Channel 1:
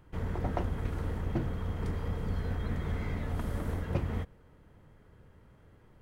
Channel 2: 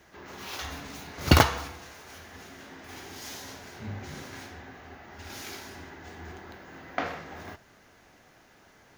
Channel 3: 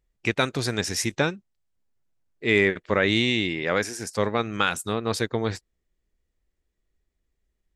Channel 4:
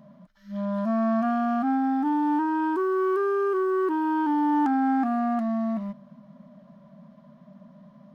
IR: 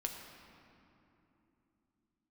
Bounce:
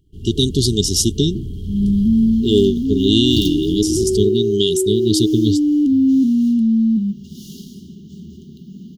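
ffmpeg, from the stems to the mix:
-filter_complex "[0:a]asoftclip=type=tanh:threshold=-26.5dB,volume=-2dB[link_01];[1:a]adelay=2050,volume=-11dB[link_02];[2:a]volume=1.5dB[link_03];[3:a]equalizer=frequency=110:width_type=o:width=2.9:gain=9.5,adelay=1200,volume=-6dB[link_04];[link_01][link_02][link_03][link_04]amix=inputs=4:normalize=0,afftfilt=real='re*(1-between(b*sr/4096,440,2800))':imag='im*(1-between(b*sr/4096,440,2800))':win_size=4096:overlap=0.75,dynaudnorm=framelen=210:gausssize=3:maxgain=12dB"

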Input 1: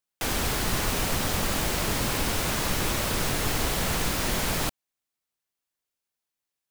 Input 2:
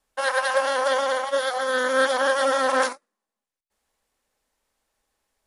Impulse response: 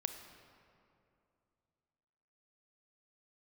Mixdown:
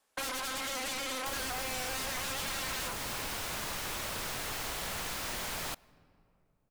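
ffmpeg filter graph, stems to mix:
-filter_complex "[0:a]adelay=1050,volume=-6dB,asplit=2[link_01][link_02];[link_02]volume=-17.5dB[link_03];[1:a]highpass=frequency=300:poles=1,aeval=exprs='0.0447*(abs(mod(val(0)/0.0447+3,4)-2)-1)':channel_layout=same,volume=1.5dB[link_04];[2:a]atrim=start_sample=2205[link_05];[link_03][link_05]afir=irnorm=-1:irlink=0[link_06];[link_01][link_04][link_06]amix=inputs=3:normalize=0,acrossover=split=560|6400[link_07][link_08][link_09];[link_07]acompressor=threshold=-45dB:ratio=4[link_10];[link_08]acompressor=threshold=-37dB:ratio=4[link_11];[link_09]acompressor=threshold=-41dB:ratio=4[link_12];[link_10][link_11][link_12]amix=inputs=3:normalize=0"

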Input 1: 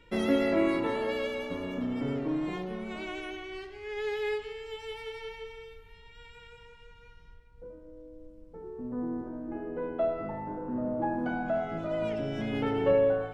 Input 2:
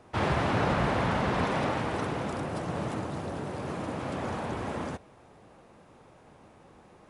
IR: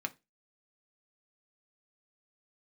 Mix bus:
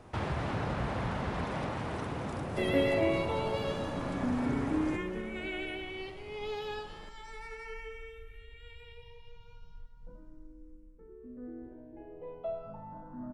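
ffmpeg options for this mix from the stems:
-filter_complex "[0:a]adynamicequalizer=threshold=0.00447:dfrequency=1900:dqfactor=0.81:tfrequency=1900:tqfactor=0.81:attack=5:release=100:ratio=0.375:range=2:mode=boostabove:tftype=bell,asplit=2[link_01][link_02];[link_02]afreqshift=0.33[link_03];[link_01][link_03]amix=inputs=2:normalize=1,adelay=2450,volume=-0.5dB,afade=type=out:start_time=10.27:duration=0.7:silence=0.375837,asplit=2[link_04][link_05];[link_05]volume=-19.5dB[link_06];[1:a]acompressor=threshold=-41dB:ratio=2,volume=0.5dB,asplit=2[link_07][link_08];[link_08]volume=-12dB[link_09];[link_06][link_09]amix=inputs=2:normalize=0,aecho=0:1:250|500|750|1000|1250|1500|1750:1|0.5|0.25|0.125|0.0625|0.0312|0.0156[link_10];[link_04][link_07][link_10]amix=inputs=3:normalize=0,lowshelf=frequency=91:gain=10"

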